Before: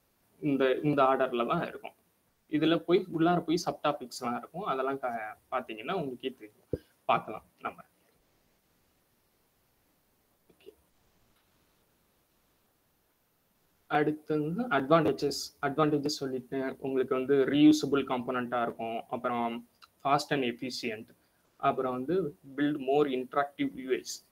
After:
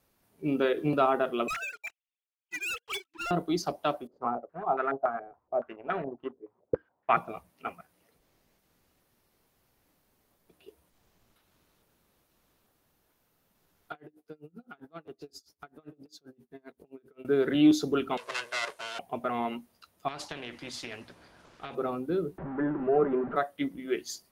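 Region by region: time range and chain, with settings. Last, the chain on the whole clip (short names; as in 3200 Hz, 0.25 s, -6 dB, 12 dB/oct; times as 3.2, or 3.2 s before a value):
1.48–3.31 sine-wave speech + resonant high-pass 2900 Hz, resonance Q 2 + sample leveller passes 5
4.07–7.17 G.711 law mismatch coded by A + low shelf 180 Hz -4 dB + stepped low-pass 7.1 Hz 470–1800 Hz
13.92–17.25 compressor 2:1, threshold -49 dBFS + dB-linear tremolo 7.6 Hz, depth 30 dB
18.17–18.99 minimum comb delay 1.9 ms + weighting filter ITU-R 468
20.08–21.75 compressor 16:1, threshold -31 dBFS + air absorption 89 m + spectral compressor 2:1
22.38–23.36 zero-crossing step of -31.5 dBFS + LPF 1500 Hz 24 dB/oct + comb 5.1 ms, depth 32%
whole clip: dry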